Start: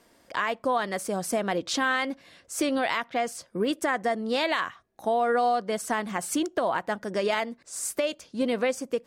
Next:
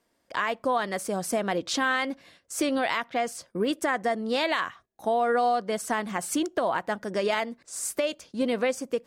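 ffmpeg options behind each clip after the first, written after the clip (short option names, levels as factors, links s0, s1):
-af "agate=range=0.251:threshold=0.00282:ratio=16:detection=peak"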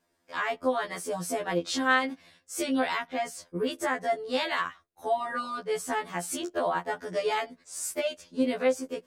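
-af "afftfilt=real='re*2*eq(mod(b,4),0)':imag='im*2*eq(mod(b,4),0)':win_size=2048:overlap=0.75"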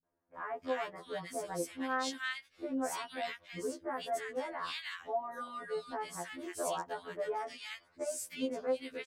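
-filter_complex "[0:a]acrossover=split=220|1600[s0][s1][s2];[s1]adelay=30[s3];[s2]adelay=340[s4];[s0][s3][s4]amix=inputs=3:normalize=0,volume=0.422"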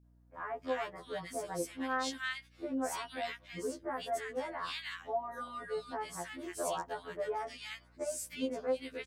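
-af "aeval=exprs='val(0)+0.000708*(sin(2*PI*60*n/s)+sin(2*PI*2*60*n/s)/2+sin(2*PI*3*60*n/s)/3+sin(2*PI*4*60*n/s)/4+sin(2*PI*5*60*n/s)/5)':c=same"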